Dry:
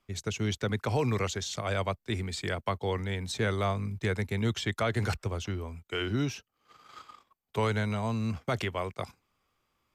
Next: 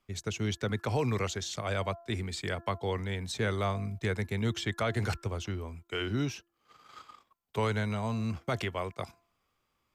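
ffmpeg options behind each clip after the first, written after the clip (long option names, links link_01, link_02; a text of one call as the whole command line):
ffmpeg -i in.wav -af "bandreject=frequency=340.9:width_type=h:width=4,bandreject=frequency=681.8:width_type=h:width=4,bandreject=frequency=1022.7:width_type=h:width=4,bandreject=frequency=1363.6:width_type=h:width=4,bandreject=frequency=1704.5:width_type=h:width=4,volume=-1.5dB" out.wav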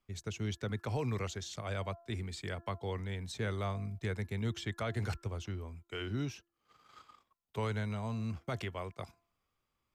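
ffmpeg -i in.wav -af "lowshelf=frequency=150:gain=5,volume=-7dB" out.wav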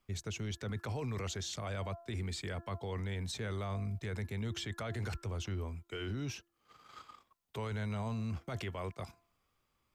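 ffmpeg -i in.wav -af "alimiter=level_in=12dB:limit=-24dB:level=0:latency=1:release=11,volume=-12dB,volume=4.5dB" out.wav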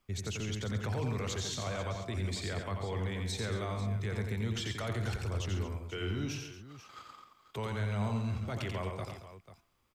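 ffmpeg -i in.wav -af "aecho=1:1:88|135|225|491:0.562|0.282|0.2|0.2,volume=2dB" out.wav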